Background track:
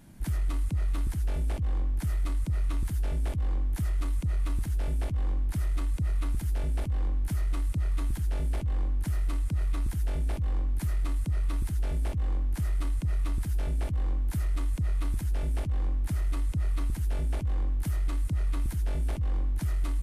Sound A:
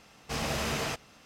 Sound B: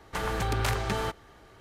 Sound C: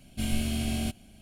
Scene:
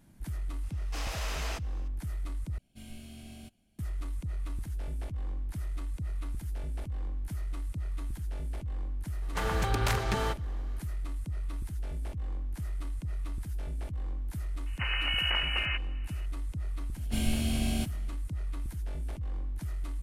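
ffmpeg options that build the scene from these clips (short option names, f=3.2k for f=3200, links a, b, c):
-filter_complex "[3:a]asplit=2[a][b];[2:a]asplit=2[c][d];[0:a]volume=-7dB[e];[1:a]highpass=600[f];[d]lowpass=f=2.6k:t=q:w=0.5098,lowpass=f=2.6k:t=q:w=0.6013,lowpass=f=2.6k:t=q:w=0.9,lowpass=f=2.6k:t=q:w=2.563,afreqshift=-3000[g];[e]asplit=2[h][i];[h]atrim=end=2.584[j];[a]atrim=end=1.21,asetpts=PTS-STARTPTS,volume=-17.5dB[k];[i]atrim=start=3.786[l];[f]atrim=end=1.25,asetpts=PTS-STARTPTS,volume=-5dB,afade=t=in:d=0.004:c=hsin,afade=t=out:st=1.246:d=0.004:c=hsin,adelay=630[m];[c]atrim=end=1.6,asetpts=PTS-STARTPTS,volume=-1dB,afade=t=in:d=0.004:c=hsin,afade=t=out:st=1.596:d=0.004:c=hsin,adelay=406602S[n];[g]atrim=end=1.6,asetpts=PTS-STARTPTS,volume=-2.5dB,afade=t=in:d=0.004:c=hsin,afade=t=out:st=1.596:d=0.004:c=hsin,adelay=14660[o];[b]atrim=end=1.21,asetpts=PTS-STARTPTS,volume=-1dB,afade=t=in:d=0.004:c=hsin,afade=t=out:st=1.206:d=0.004:c=hsin,adelay=16940[p];[j][k]acrossfade=d=0.004:c1=hsin:c2=hsin[q];[q][l]acrossfade=d=0.004:c1=hsin:c2=hsin[r];[r][m][n][o][p]amix=inputs=5:normalize=0"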